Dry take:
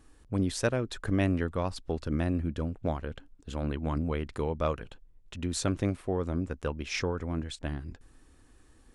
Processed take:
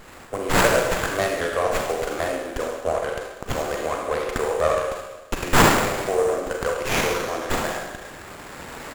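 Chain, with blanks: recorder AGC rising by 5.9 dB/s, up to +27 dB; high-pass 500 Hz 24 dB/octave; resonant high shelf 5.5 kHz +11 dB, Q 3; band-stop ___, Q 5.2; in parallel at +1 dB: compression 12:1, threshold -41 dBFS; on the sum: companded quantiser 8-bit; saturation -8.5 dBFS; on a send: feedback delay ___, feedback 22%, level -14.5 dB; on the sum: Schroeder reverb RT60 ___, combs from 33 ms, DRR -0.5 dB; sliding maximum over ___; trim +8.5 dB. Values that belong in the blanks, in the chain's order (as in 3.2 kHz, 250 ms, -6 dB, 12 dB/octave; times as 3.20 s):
900 Hz, 77 ms, 1.2 s, 9 samples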